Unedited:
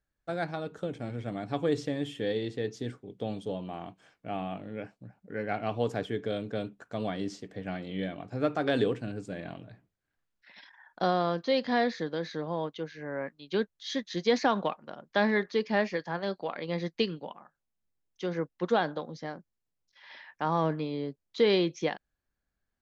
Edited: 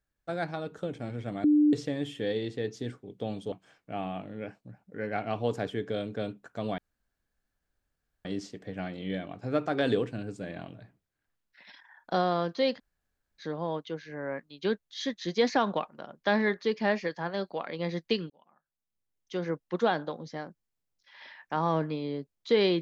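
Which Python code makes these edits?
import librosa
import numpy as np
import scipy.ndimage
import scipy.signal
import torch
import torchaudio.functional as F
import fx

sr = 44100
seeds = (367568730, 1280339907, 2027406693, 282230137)

y = fx.edit(x, sr, fx.bleep(start_s=1.44, length_s=0.29, hz=298.0, db=-18.0),
    fx.cut(start_s=3.52, length_s=0.36),
    fx.insert_room_tone(at_s=7.14, length_s=1.47),
    fx.room_tone_fill(start_s=11.66, length_s=0.64, crossfade_s=0.06),
    fx.fade_in_span(start_s=17.19, length_s=1.07), tone=tone)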